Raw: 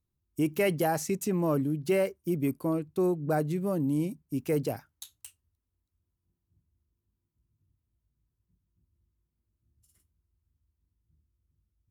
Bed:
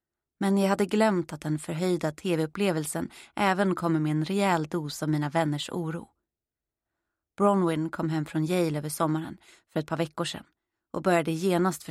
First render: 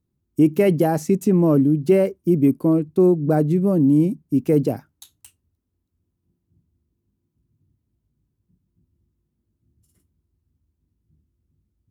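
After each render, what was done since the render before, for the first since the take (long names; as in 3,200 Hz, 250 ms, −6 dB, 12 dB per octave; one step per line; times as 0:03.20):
parametric band 240 Hz +13.5 dB 2.8 octaves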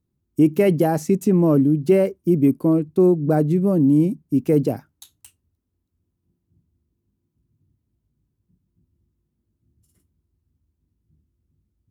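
no processing that can be heard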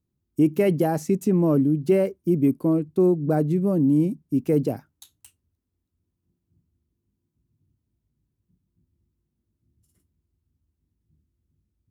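level −3.5 dB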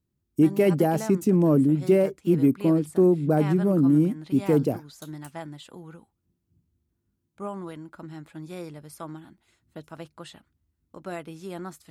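mix in bed −12 dB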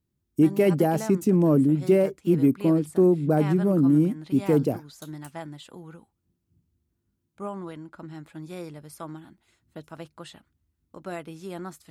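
0:07.49–0:08.15: high-shelf EQ 12,000 Hz −11 dB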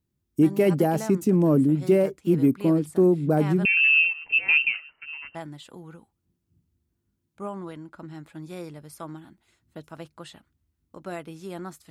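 0:03.65–0:05.35: voice inversion scrambler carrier 2,900 Hz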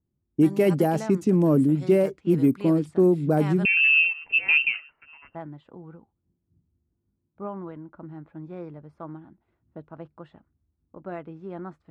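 low-pass that shuts in the quiet parts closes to 900 Hz, open at −16.5 dBFS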